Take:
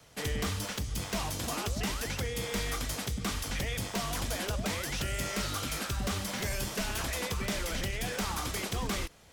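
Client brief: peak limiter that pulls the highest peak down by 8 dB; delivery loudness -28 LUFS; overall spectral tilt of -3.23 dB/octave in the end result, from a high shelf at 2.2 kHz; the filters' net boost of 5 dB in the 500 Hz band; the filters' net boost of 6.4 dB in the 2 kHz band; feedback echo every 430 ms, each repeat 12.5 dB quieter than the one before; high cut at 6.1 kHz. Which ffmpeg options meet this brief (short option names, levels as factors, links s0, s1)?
-af "lowpass=6100,equalizer=f=500:t=o:g=5.5,equalizer=f=2000:t=o:g=5,highshelf=f=2200:g=4.5,alimiter=level_in=1.33:limit=0.0631:level=0:latency=1,volume=0.75,aecho=1:1:430|860|1290:0.237|0.0569|0.0137,volume=2"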